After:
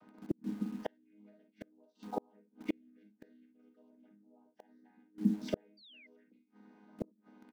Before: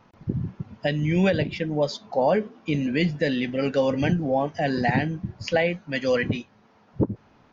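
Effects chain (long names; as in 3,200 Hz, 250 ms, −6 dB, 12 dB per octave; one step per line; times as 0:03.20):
channel vocoder with a chord as carrier minor triad, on G#3
on a send: ambience of single reflections 25 ms −15.5 dB, 41 ms −7.5 dB, 54 ms −10.5 dB, 68 ms −14 dB
0:05.77–0:06.07: on the sum: sound drawn into the spectrogram fall 2,000–4,800 Hz −16 dBFS
gate with flip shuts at −21 dBFS, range −40 dB
0:05.18–0:05.83: tilt shelving filter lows +4.5 dB, about 740 Hz
in parallel at −9 dB: bit reduction 8 bits
on the sum: level −2 dB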